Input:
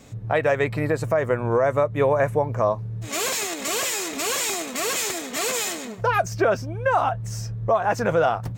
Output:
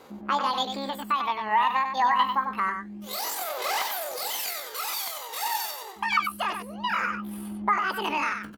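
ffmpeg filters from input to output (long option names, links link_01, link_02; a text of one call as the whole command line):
ffmpeg -i in.wav -filter_complex "[0:a]asetrate=80880,aresample=44100,atempo=0.545254,aphaser=in_gain=1:out_gain=1:delay=1.1:decay=0.58:speed=0.27:type=sinusoidal,bass=frequency=250:gain=-14,treble=frequency=4000:gain=-2,asplit=2[link_01][link_02];[link_02]aecho=0:1:96:0.447[link_03];[link_01][link_03]amix=inputs=2:normalize=0,volume=-6dB" out.wav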